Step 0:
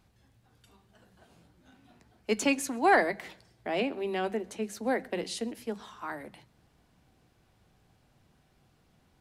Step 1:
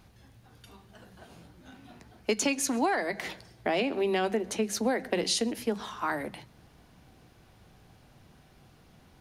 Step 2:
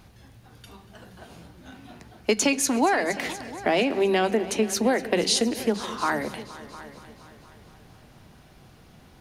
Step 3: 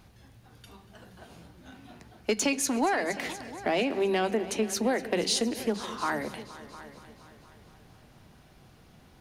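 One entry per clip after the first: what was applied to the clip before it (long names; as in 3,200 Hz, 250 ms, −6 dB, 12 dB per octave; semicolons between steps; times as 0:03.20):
notch filter 7,700 Hz, Q 10; dynamic equaliser 5,900 Hz, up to +6 dB, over −50 dBFS, Q 0.88; downward compressor 20 to 1, threshold −32 dBFS, peak gain reduction 17 dB; level +8.5 dB
echo machine with several playback heads 236 ms, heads all three, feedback 41%, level −20 dB; level +5.5 dB
soft clipping −10.5 dBFS, distortion −25 dB; level −4 dB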